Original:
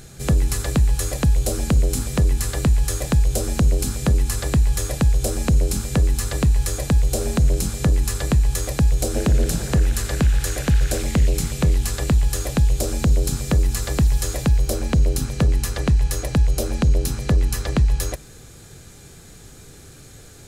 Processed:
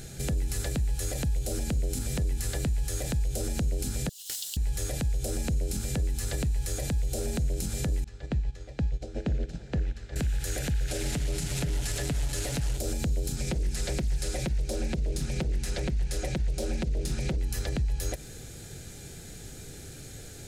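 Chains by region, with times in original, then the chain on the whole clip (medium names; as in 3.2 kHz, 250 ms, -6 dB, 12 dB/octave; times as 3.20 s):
4.09–4.57 s: self-modulated delay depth 0.054 ms + Chebyshev high-pass 2.8 kHz, order 8 + careless resampling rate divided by 2×, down none, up hold
8.04–10.16 s: distance through air 160 m + upward expansion 2.5:1, over -24 dBFS
10.88–12.78 s: one-bit delta coder 64 kbps, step -22.5 dBFS + comb 7 ms, depth 45% + loudspeaker Doppler distortion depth 0.17 ms
13.36–17.38 s: low-pass 10 kHz + comb 5.5 ms, depth 79% + loudspeaker Doppler distortion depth 0.7 ms
whole clip: peaking EQ 1.1 kHz -12.5 dB 0.35 oct; compression, threshold -24 dBFS; peak limiter -21.5 dBFS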